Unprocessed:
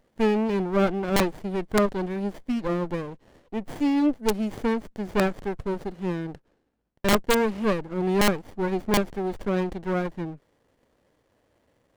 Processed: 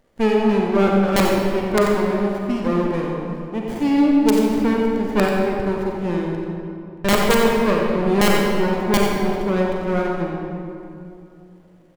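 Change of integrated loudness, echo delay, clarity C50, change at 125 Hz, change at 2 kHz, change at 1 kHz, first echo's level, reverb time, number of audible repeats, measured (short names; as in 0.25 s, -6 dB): +6.5 dB, 89 ms, -0.5 dB, +6.0 dB, +6.5 dB, +7.0 dB, -8.0 dB, 2.7 s, 1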